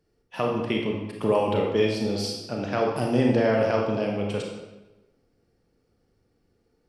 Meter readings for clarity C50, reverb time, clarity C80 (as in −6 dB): 2.0 dB, 1.1 s, 5.0 dB